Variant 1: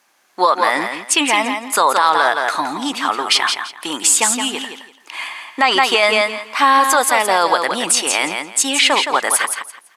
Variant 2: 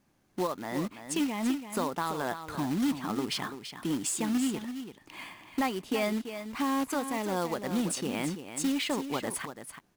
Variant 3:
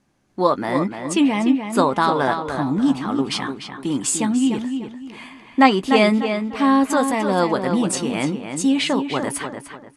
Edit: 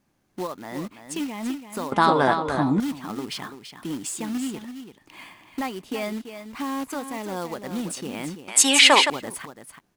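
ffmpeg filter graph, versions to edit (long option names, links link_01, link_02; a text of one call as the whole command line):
ffmpeg -i take0.wav -i take1.wav -i take2.wav -filter_complex "[1:a]asplit=3[link_01][link_02][link_03];[link_01]atrim=end=1.922[link_04];[2:a]atrim=start=1.918:end=2.802[link_05];[link_02]atrim=start=2.798:end=8.482[link_06];[0:a]atrim=start=8.478:end=9.102[link_07];[link_03]atrim=start=9.098[link_08];[link_04][link_05]acrossfade=duration=0.004:curve1=hsin:curve2=hsin[link_09];[link_09][link_06]acrossfade=duration=0.004:curve1=hsin:curve2=hsin[link_10];[link_10][link_07]acrossfade=duration=0.004:curve1=hsin:curve2=hsin[link_11];[link_11][link_08]acrossfade=duration=0.004:curve1=hsin:curve2=hsin" out.wav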